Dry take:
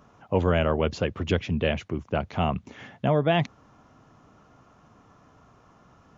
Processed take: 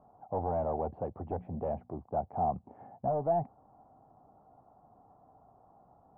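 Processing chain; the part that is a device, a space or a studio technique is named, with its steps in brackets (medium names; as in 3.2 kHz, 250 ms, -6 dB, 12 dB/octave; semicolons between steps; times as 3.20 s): 1.18–2.01 s: hum notches 60/120/180/240 Hz; overdriven synthesiser ladder filter (saturation -20.5 dBFS, distortion -10 dB; four-pole ladder low-pass 830 Hz, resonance 75%); trim +2 dB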